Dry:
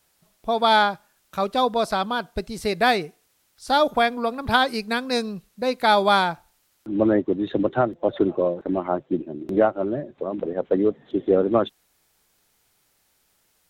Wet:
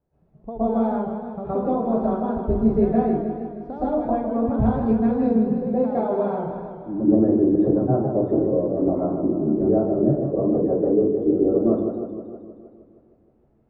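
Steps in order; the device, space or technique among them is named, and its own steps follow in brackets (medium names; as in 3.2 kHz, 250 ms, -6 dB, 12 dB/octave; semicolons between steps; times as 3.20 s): television next door (compression, threshold -25 dBFS, peak gain reduction 12 dB; low-pass 440 Hz 12 dB/octave; reverberation RT60 0.50 s, pre-delay 111 ms, DRR -10.5 dB); modulated delay 156 ms, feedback 63%, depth 126 cents, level -7.5 dB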